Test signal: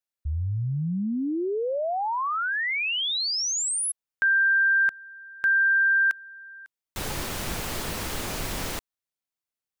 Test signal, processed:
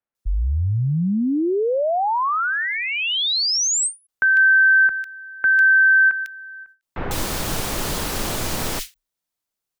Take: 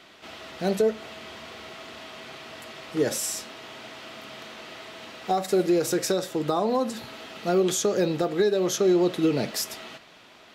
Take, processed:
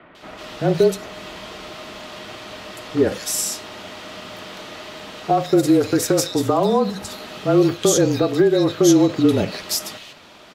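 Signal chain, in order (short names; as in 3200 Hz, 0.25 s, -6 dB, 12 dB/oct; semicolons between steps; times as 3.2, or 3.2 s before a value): bands offset in time lows, highs 0.15 s, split 2200 Hz; frequency shift -30 Hz; ending taper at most 290 dB/s; gain +7 dB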